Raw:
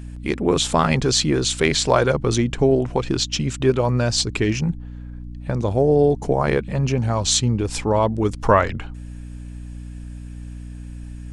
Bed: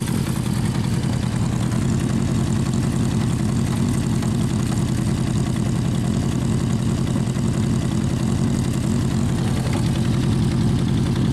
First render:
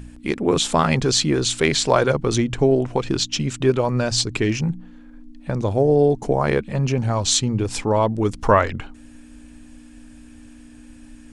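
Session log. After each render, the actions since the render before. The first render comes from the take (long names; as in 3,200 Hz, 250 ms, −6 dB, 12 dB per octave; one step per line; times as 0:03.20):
hum removal 60 Hz, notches 3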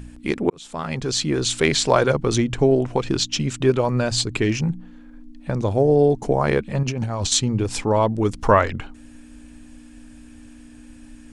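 0:00.50–0:01.58: fade in
0:03.95–0:04.41: parametric band 5,600 Hz −7.5 dB 0.27 octaves
0:06.83–0:07.32: compressor whose output falls as the input rises −25 dBFS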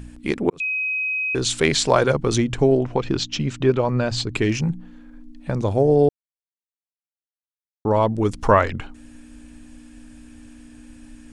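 0:00.60–0:01.35: beep over 2,530 Hz −21 dBFS
0:02.77–0:04.34: high-frequency loss of the air 96 metres
0:06.09–0:07.85: silence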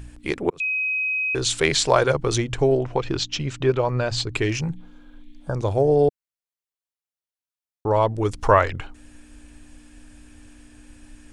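0:04.79–0:05.52: healed spectral selection 1,700–4,500 Hz before
parametric band 220 Hz −10.5 dB 0.7 octaves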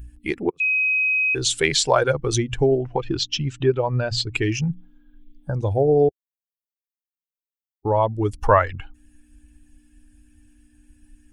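spectral dynamics exaggerated over time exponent 1.5
in parallel at +1 dB: downward compressor, threshold −29 dBFS, peak gain reduction 16 dB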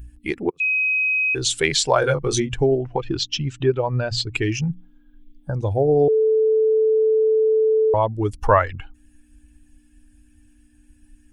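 0:02.00–0:02.53: double-tracking delay 22 ms −4 dB
0:06.08–0:07.94: beep over 438 Hz −14 dBFS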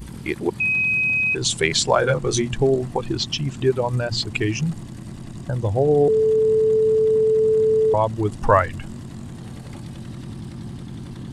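mix in bed −15 dB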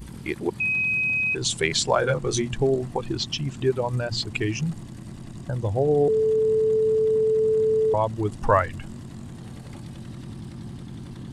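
level −3.5 dB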